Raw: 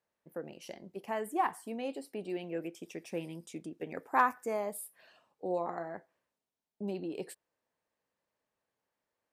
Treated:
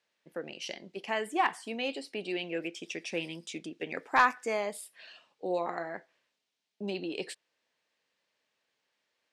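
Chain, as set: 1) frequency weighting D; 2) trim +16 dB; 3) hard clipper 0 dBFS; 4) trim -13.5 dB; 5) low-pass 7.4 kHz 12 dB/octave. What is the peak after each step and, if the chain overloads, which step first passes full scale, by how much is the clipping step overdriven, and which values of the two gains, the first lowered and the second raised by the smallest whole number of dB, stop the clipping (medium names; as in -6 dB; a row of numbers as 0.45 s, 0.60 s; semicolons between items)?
-10.5 dBFS, +5.5 dBFS, 0.0 dBFS, -13.5 dBFS, -13.0 dBFS; step 2, 5.5 dB; step 2 +10 dB, step 4 -7.5 dB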